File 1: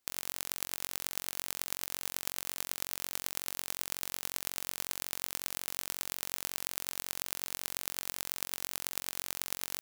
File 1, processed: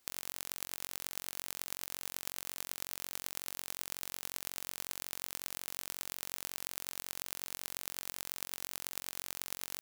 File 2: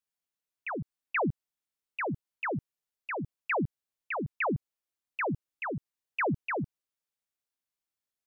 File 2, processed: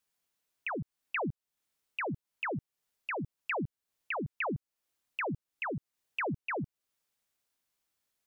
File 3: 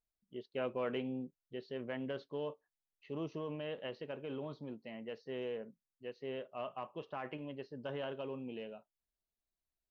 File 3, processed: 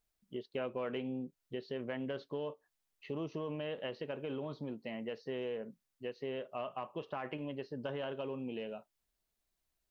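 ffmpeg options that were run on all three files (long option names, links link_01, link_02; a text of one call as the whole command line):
ffmpeg -i in.wav -af "acompressor=threshold=-47dB:ratio=2.5,volume=8dB" out.wav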